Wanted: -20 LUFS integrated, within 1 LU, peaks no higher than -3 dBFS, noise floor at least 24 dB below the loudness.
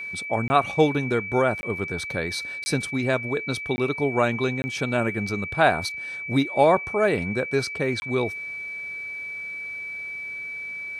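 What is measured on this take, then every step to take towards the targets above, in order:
dropouts 6; longest dropout 20 ms; steady tone 2.3 kHz; tone level -31 dBFS; loudness -25.0 LUFS; peak level -5.0 dBFS; loudness target -20.0 LUFS
-> interpolate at 0.48/1.61/2.64/3.76/4.62/8.00 s, 20 ms; band-stop 2.3 kHz, Q 30; trim +5 dB; peak limiter -3 dBFS

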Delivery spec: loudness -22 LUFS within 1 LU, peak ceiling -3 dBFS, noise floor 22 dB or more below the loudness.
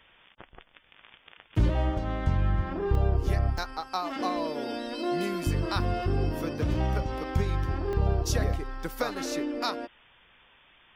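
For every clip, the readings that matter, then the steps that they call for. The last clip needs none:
dropouts 4; longest dropout 1.2 ms; loudness -29.5 LUFS; peak level -12.5 dBFS; loudness target -22.0 LUFS
-> interpolate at 2.95/3.58/5.44/7.93 s, 1.2 ms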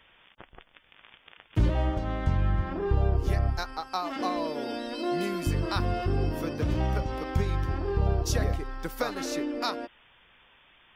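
dropouts 0; loudness -29.5 LUFS; peak level -12.5 dBFS; loudness target -22.0 LUFS
-> trim +7.5 dB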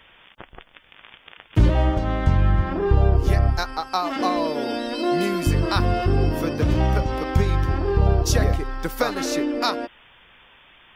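loudness -22.0 LUFS; peak level -5.0 dBFS; noise floor -53 dBFS

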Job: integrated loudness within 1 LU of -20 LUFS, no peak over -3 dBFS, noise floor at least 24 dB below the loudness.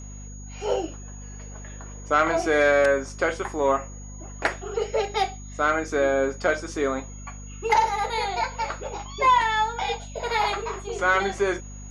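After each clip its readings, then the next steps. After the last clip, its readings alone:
hum 50 Hz; highest harmonic 250 Hz; hum level -37 dBFS; steady tone 6.7 kHz; tone level -45 dBFS; loudness -24.5 LUFS; peak level -9.0 dBFS; loudness target -20.0 LUFS
-> hum notches 50/100/150/200/250 Hz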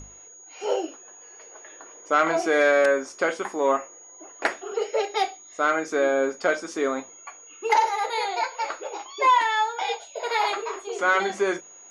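hum not found; steady tone 6.7 kHz; tone level -45 dBFS
-> band-stop 6.7 kHz, Q 30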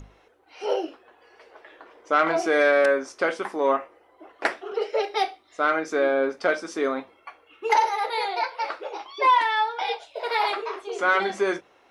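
steady tone not found; loudness -24.5 LUFS; peak level -8.5 dBFS; loudness target -20.0 LUFS
-> trim +4.5 dB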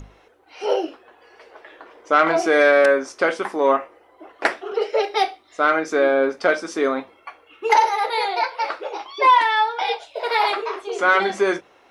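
loudness -20.0 LUFS; peak level -4.0 dBFS; noise floor -55 dBFS

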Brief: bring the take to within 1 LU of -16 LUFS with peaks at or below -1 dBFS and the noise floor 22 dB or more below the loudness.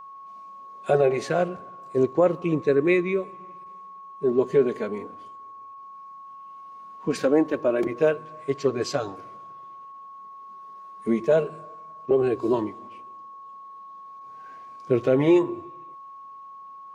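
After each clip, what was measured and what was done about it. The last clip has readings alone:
steady tone 1.1 kHz; tone level -40 dBFS; loudness -24.0 LUFS; peak level -9.5 dBFS; loudness target -16.0 LUFS
-> band-stop 1.1 kHz, Q 30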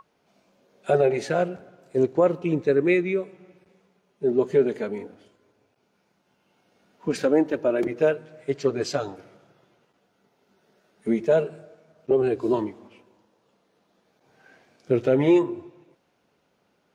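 steady tone not found; loudness -24.0 LUFS; peak level -9.5 dBFS; loudness target -16.0 LUFS
-> trim +8 dB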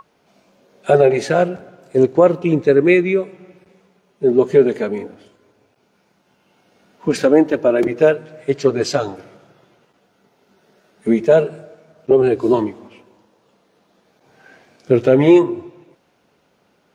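loudness -16.0 LUFS; peak level -1.5 dBFS; noise floor -61 dBFS

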